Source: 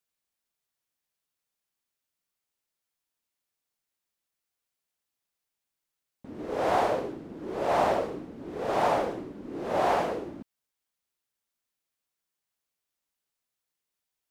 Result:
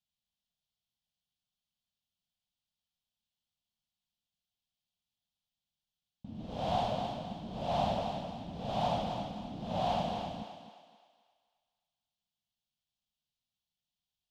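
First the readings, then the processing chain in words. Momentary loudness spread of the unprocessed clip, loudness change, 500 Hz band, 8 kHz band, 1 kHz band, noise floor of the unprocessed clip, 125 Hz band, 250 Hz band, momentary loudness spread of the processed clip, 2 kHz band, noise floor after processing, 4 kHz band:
15 LU, -7.0 dB, -8.5 dB, -8.5 dB, -6.0 dB, under -85 dBFS, +3.5 dB, -3.5 dB, 13 LU, -13.0 dB, under -85 dBFS, +1.0 dB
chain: FFT filter 210 Hz 0 dB, 380 Hz -25 dB, 720 Hz -8 dB, 1.3 kHz -20 dB, 2 kHz -21 dB, 3.2 kHz -1 dB, 9.5 kHz -19 dB; on a send: thinning echo 263 ms, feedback 42%, level -5.5 dB; on the sum: trim +3.5 dB

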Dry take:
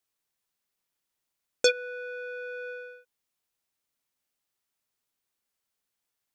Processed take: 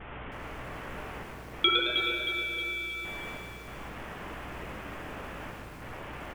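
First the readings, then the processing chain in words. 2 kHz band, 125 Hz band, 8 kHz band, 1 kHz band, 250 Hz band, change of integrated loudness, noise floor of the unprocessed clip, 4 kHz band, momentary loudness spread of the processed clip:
+4.0 dB, no reading, -12.0 dB, +16.0 dB, +19.5 dB, -2.0 dB, -84 dBFS, +8.5 dB, 17 LU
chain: zero-crossing glitches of -20.5 dBFS; de-hum 164 Hz, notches 20; expander -30 dBFS; trance gate "xxxxxxxx..xxxx" 98 bpm; on a send: frequency-shifting echo 109 ms, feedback 36%, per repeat -130 Hz, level -5.5 dB; on the sum: frequency inversion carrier 3.8 kHz; simulated room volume 200 m³, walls hard, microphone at 0.37 m; hum 60 Hz, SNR 14 dB; bit-crushed delay 314 ms, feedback 55%, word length 8-bit, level -7.5 dB

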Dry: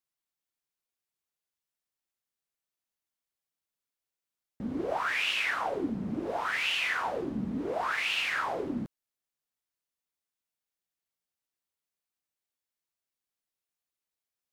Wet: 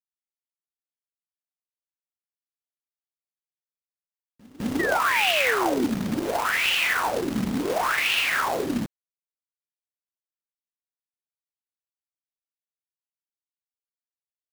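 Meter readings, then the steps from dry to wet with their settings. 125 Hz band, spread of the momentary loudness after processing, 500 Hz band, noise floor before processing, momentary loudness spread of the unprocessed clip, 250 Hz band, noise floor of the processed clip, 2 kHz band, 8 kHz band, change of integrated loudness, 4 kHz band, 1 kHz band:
+7.0 dB, 8 LU, +8.0 dB, under -85 dBFS, 8 LU, +7.5 dB, under -85 dBFS, +7.0 dB, +13.0 dB, +7.5 dB, +7.0 dB, +7.5 dB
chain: companded quantiser 4-bit; pre-echo 206 ms -22.5 dB; painted sound fall, 4.79–5.85 s, 230–2000 Hz -34 dBFS; trim +6.5 dB

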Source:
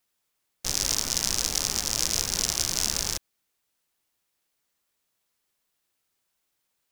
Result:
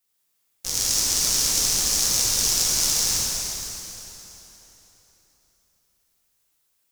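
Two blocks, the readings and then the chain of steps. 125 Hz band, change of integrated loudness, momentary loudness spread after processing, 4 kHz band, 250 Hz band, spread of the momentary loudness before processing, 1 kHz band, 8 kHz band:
+1.5 dB, +5.5 dB, 15 LU, +5.0 dB, +1.5 dB, 5 LU, +2.0 dB, +6.5 dB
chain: treble shelf 5.1 kHz +8.5 dB; plate-style reverb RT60 3.7 s, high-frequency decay 0.85×, DRR -6.5 dB; trim -6 dB

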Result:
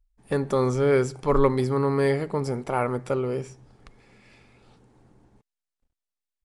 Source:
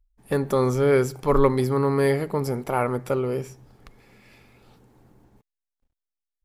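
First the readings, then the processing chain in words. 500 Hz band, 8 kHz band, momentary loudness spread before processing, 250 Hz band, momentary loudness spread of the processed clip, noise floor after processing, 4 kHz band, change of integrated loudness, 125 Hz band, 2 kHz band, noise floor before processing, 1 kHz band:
-1.5 dB, -3.0 dB, 8 LU, -1.5 dB, 8 LU, under -85 dBFS, -1.5 dB, -1.5 dB, -1.5 dB, -1.5 dB, under -85 dBFS, -1.5 dB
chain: resampled via 22.05 kHz; trim -1.5 dB

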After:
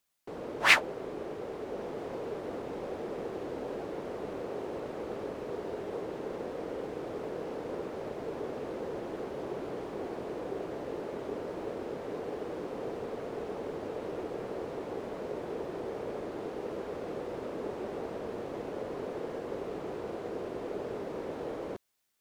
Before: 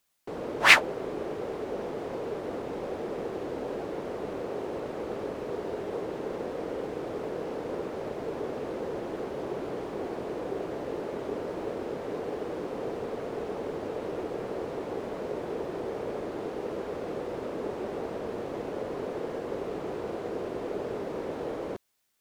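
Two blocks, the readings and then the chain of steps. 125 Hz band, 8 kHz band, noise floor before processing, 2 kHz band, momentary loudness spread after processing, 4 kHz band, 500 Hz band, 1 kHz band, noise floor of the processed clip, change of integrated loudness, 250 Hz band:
-3.5 dB, no reading, -38 dBFS, -4.5 dB, 1 LU, -4.5 dB, -3.5 dB, -4.0 dB, -41 dBFS, -4.0 dB, -3.5 dB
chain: gain riding within 3 dB 2 s; trim -6 dB

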